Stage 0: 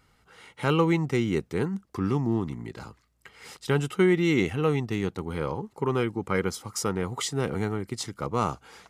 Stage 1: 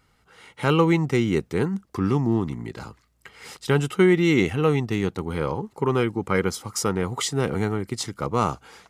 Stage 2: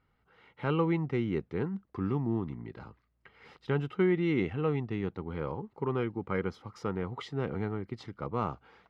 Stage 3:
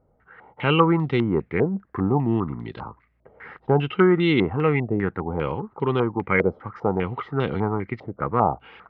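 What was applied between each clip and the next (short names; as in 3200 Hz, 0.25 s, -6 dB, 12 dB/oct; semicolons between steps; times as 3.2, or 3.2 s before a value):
AGC gain up to 4 dB
air absorption 320 m; gain -8.5 dB
stepped low-pass 5 Hz 610–3600 Hz; gain +8.5 dB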